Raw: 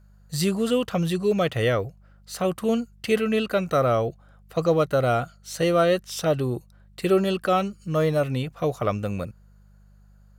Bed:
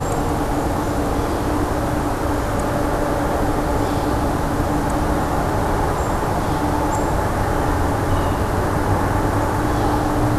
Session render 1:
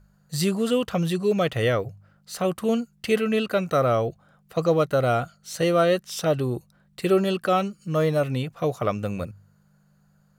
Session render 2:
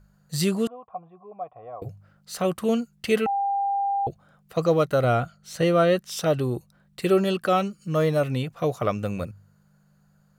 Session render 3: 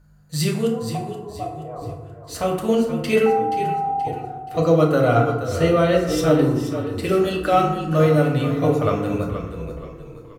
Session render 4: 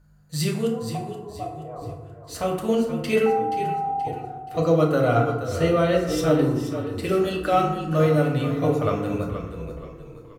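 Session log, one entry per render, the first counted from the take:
hum removal 50 Hz, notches 2
0:00.67–0:01.82: formant resonators in series a; 0:03.26–0:04.07: beep over 797 Hz −21.5 dBFS; 0:05.04–0:05.99: bass and treble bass +3 dB, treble −5 dB
on a send: echo with shifted repeats 477 ms, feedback 41%, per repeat −35 Hz, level −10 dB; on the sum: feedback delay network reverb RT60 1 s, low-frequency decay 1.35×, high-frequency decay 0.45×, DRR −1.5 dB
level −3 dB

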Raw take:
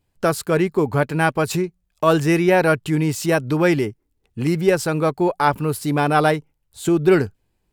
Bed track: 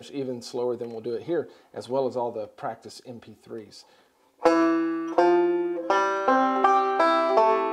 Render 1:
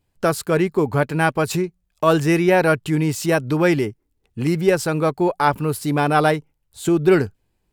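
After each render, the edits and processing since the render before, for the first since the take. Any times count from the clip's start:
no processing that can be heard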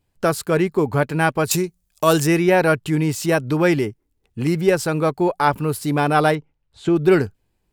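0:01.51–0:02.27: bass and treble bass 0 dB, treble +12 dB
0:06.35–0:06.96: low-pass filter 3,800 Hz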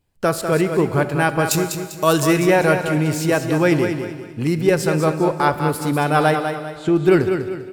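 repeating echo 198 ms, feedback 36%, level −7.5 dB
four-comb reverb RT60 1.9 s, combs from 26 ms, DRR 12.5 dB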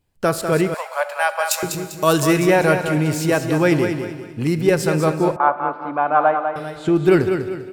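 0:00.74–0:01.63: Butterworth high-pass 530 Hz 96 dB per octave
0:05.36–0:06.56: loudspeaker in its box 430–2,000 Hz, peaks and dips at 430 Hz −9 dB, 680 Hz +6 dB, 1,100 Hz +5 dB, 1,900 Hz −9 dB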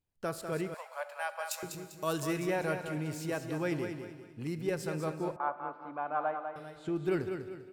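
level −17 dB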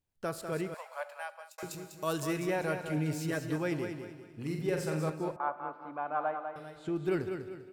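0:01.01–0:01.58: fade out
0:02.89–0:03.56: comb filter 6.8 ms, depth 73%
0:04.29–0:05.10: flutter between parallel walls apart 7.7 metres, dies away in 0.46 s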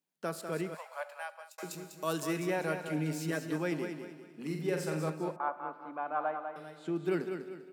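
Chebyshev high-pass filter 160 Hz, order 5

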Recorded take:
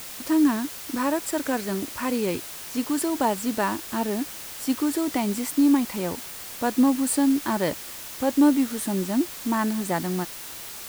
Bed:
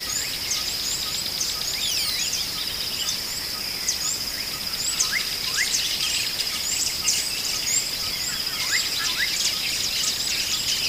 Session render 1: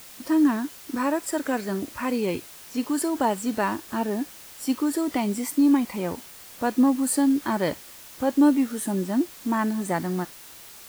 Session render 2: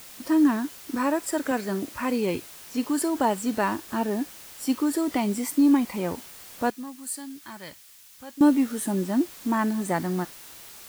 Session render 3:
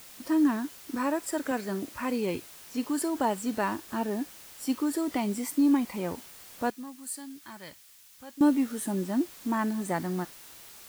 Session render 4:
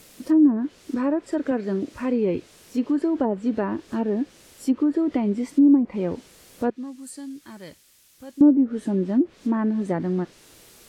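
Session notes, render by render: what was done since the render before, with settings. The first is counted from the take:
noise reduction from a noise print 7 dB
0:01.51–0:01.93: high-pass filter 110 Hz; 0:06.70–0:08.41: guitar amp tone stack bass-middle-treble 5-5-5
level −4 dB
treble cut that deepens with the level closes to 760 Hz, closed at −21 dBFS; low shelf with overshoot 630 Hz +6.5 dB, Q 1.5

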